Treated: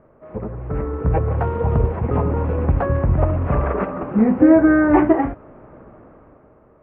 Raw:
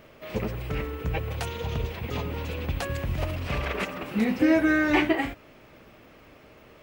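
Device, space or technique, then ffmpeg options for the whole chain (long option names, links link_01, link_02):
action camera in a waterproof case: -af "lowpass=frequency=1300:width=0.5412,lowpass=frequency=1300:width=1.3066,dynaudnorm=framelen=100:gausssize=17:maxgain=12.5dB" -ar 22050 -c:a aac -b:a 48k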